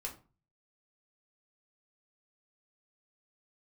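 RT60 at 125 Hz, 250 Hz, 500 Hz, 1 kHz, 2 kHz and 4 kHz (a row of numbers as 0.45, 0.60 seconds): 0.65, 0.45, 0.35, 0.35, 0.25, 0.25 seconds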